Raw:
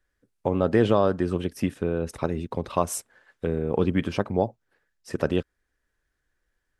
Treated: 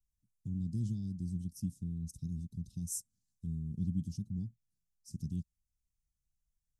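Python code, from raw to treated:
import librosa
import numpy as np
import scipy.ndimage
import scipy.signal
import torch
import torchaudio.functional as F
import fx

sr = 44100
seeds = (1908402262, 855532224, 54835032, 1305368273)

y = scipy.signal.sosfilt(scipy.signal.ellip(3, 1.0, 50, [180.0, 6000.0], 'bandstop', fs=sr, output='sos'), x)
y = y * 10.0 ** (-6.0 / 20.0)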